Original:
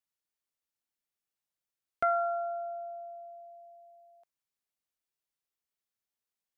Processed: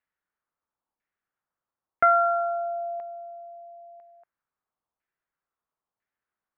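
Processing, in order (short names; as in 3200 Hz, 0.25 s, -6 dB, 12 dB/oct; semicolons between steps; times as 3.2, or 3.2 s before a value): LFO low-pass saw down 1 Hz 940–1900 Hz; gain +5 dB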